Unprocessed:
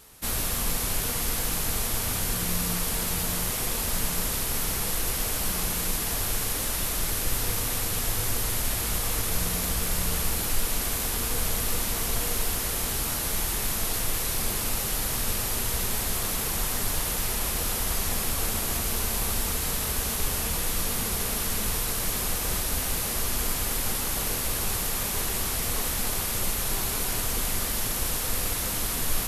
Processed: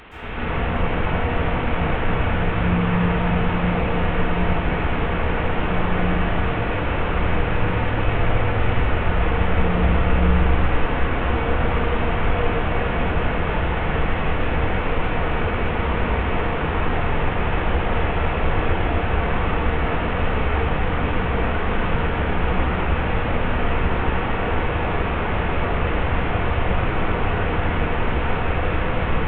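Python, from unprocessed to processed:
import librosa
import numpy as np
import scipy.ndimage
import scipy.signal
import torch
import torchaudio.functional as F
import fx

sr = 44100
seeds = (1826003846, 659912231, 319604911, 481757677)

p1 = fx.delta_mod(x, sr, bps=16000, step_db=-37.0)
p2 = p1 + fx.echo_alternate(p1, sr, ms=314, hz=870.0, feedback_pct=74, wet_db=-7.5, dry=0)
y = fx.rev_plate(p2, sr, seeds[0], rt60_s=1.2, hf_ratio=0.6, predelay_ms=110, drr_db=-10.0)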